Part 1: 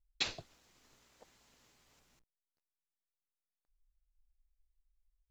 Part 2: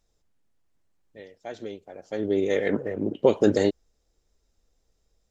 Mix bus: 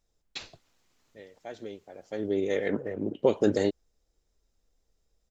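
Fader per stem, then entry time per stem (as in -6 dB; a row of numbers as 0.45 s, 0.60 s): -4.5 dB, -4.0 dB; 0.15 s, 0.00 s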